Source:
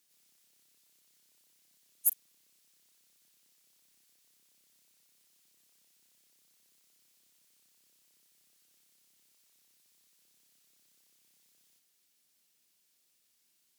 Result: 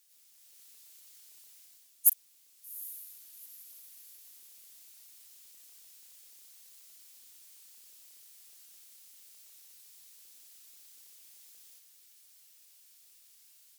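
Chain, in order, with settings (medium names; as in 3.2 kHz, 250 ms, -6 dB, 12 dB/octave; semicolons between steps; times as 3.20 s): high-pass 250 Hz 12 dB/octave; tilt EQ +2 dB/octave; level rider gain up to 7 dB; on a send: echo that smears into a reverb 784 ms, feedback 44%, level -15.5 dB; on the sum: trim -1 dB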